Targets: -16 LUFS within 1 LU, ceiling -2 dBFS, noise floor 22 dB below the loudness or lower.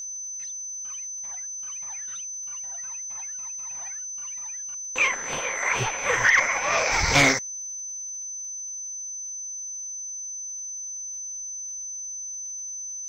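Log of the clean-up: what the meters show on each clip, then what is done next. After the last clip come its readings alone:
tick rate 56 per s; steady tone 6.1 kHz; tone level -32 dBFS; loudness -26.5 LUFS; peak level -9.5 dBFS; loudness target -16.0 LUFS
-> de-click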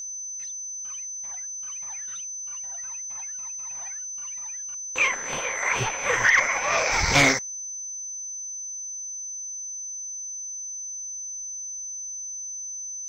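tick rate 0.31 per s; steady tone 6.1 kHz; tone level -32 dBFS
-> band-stop 6.1 kHz, Q 30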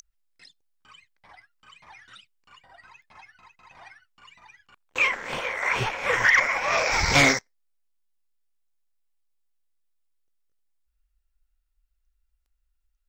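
steady tone not found; loudness -22.0 LUFS; peak level -9.0 dBFS; loudness target -16.0 LUFS
-> trim +6 dB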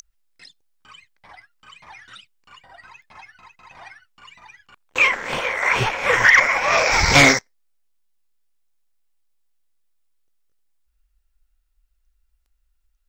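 loudness -16.0 LUFS; peak level -3.0 dBFS; noise floor -68 dBFS

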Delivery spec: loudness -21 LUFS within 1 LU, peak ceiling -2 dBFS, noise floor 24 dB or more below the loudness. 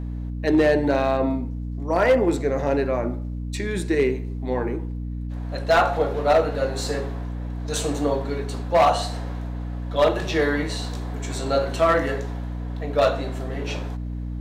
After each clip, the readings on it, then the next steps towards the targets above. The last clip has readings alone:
clipped samples 0.6%; clipping level -11.5 dBFS; hum 60 Hz; highest harmonic 300 Hz; hum level -27 dBFS; loudness -23.5 LUFS; peak level -11.5 dBFS; loudness target -21.0 LUFS
-> clip repair -11.5 dBFS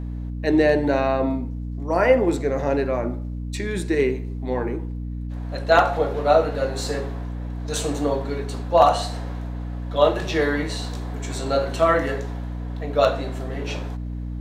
clipped samples 0.0%; hum 60 Hz; highest harmonic 300 Hz; hum level -27 dBFS
-> de-hum 60 Hz, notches 5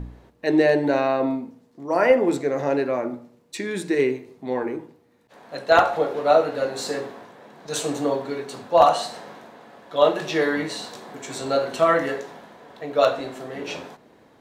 hum not found; loudness -22.5 LUFS; peak level -2.5 dBFS; loudness target -21.0 LUFS
-> trim +1.5 dB; peak limiter -2 dBFS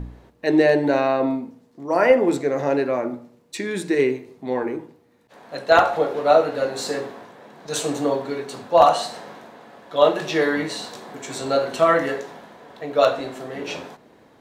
loudness -21.0 LUFS; peak level -2.0 dBFS; noise floor -56 dBFS

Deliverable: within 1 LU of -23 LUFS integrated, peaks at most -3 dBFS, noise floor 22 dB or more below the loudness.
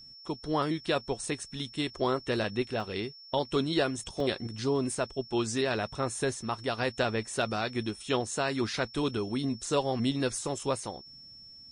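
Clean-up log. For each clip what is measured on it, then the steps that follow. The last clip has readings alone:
dropouts 2; longest dropout 2.2 ms; steady tone 5.4 kHz; tone level -48 dBFS; loudness -31.5 LUFS; peak level -15.0 dBFS; loudness target -23.0 LUFS
-> interpolate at 2.80/4.20 s, 2.2 ms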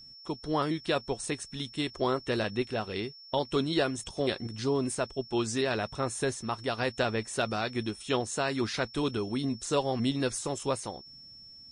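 dropouts 0; steady tone 5.4 kHz; tone level -48 dBFS
-> band-stop 5.4 kHz, Q 30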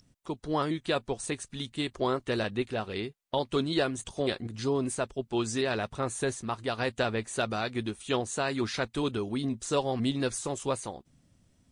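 steady tone not found; loudness -31.5 LUFS; peak level -15.0 dBFS; loudness target -23.0 LUFS
-> trim +8.5 dB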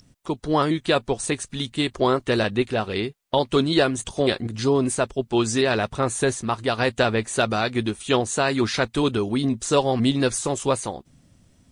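loudness -23.0 LUFS; peak level -6.5 dBFS; noise floor -60 dBFS

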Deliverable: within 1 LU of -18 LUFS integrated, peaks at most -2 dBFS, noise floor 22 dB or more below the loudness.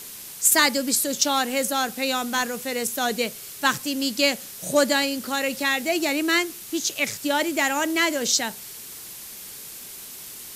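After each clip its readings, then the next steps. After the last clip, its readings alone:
noise floor -40 dBFS; noise floor target -45 dBFS; loudness -22.5 LUFS; peak level -6.0 dBFS; loudness target -18.0 LUFS
-> noise print and reduce 6 dB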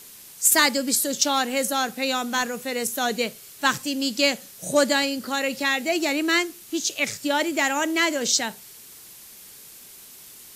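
noise floor -46 dBFS; loudness -23.0 LUFS; peak level -6.0 dBFS; loudness target -18.0 LUFS
-> trim +5 dB; peak limiter -2 dBFS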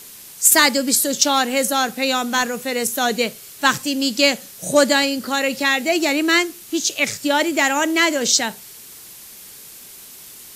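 loudness -18.0 LUFS; peak level -2.0 dBFS; noise floor -41 dBFS

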